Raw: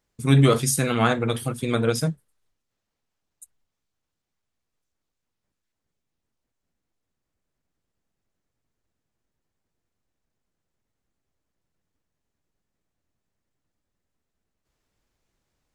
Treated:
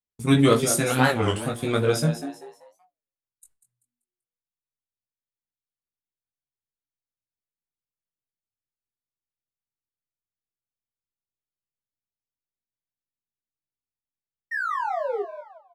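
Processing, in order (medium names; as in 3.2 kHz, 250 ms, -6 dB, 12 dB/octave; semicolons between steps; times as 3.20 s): gate with hold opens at -31 dBFS; painted sound fall, 14.51–15.23 s, 380–1900 Hz -27 dBFS; in parallel at -6 dB: crossover distortion -37 dBFS; on the sum: chorus 0.15 Hz, delay 17.5 ms, depth 3.3 ms; frequency-shifting echo 193 ms, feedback 33%, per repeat +120 Hz, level -11 dB; on a send at -23.5 dB: reverberation RT60 0.50 s, pre-delay 4 ms; on the sum: warped record 33 1/3 rpm, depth 250 cents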